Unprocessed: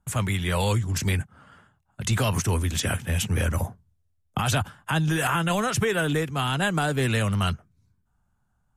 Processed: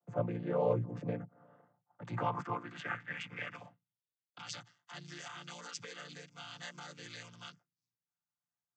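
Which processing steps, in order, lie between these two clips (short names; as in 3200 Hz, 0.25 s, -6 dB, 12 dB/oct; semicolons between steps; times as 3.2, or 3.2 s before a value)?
chord vocoder major triad, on A#2; band-pass sweep 560 Hz -> 5500 Hz, 1.52–4.58; gain +7.5 dB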